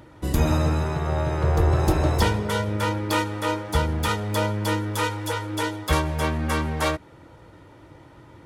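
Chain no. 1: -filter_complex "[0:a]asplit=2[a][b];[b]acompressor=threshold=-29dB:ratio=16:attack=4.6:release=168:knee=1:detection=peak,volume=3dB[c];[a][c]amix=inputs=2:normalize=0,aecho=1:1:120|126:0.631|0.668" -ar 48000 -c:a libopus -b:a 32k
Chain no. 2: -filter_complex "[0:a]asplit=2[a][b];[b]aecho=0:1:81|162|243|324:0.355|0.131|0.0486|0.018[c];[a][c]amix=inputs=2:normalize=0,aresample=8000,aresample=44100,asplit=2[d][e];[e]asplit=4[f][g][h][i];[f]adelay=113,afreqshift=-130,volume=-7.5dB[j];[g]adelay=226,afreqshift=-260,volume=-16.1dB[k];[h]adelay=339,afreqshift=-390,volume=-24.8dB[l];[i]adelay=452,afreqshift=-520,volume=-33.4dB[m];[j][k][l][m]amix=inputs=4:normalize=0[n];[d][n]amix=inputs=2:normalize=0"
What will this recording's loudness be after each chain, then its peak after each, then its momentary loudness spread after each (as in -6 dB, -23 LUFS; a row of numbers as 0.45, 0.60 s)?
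-19.5, -24.0 LUFS; -4.0, -7.0 dBFS; 21, 6 LU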